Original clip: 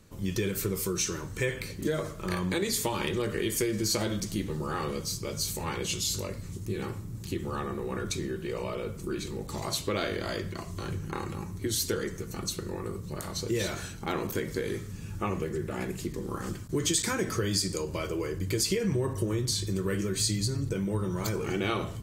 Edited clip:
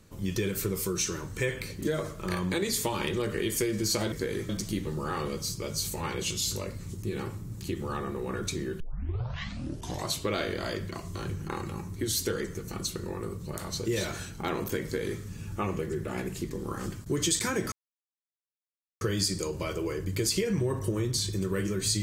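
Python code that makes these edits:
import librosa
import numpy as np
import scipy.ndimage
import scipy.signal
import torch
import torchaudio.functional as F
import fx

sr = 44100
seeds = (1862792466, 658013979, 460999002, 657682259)

y = fx.edit(x, sr, fx.tape_start(start_s=8.43, length_s=1.3),
    fx.duplicate(start_s=14.47, length_s=0.37, to_s=4.12),
    fx.insert_silence(at_s=17.35, length_s=1.29), tone=tone)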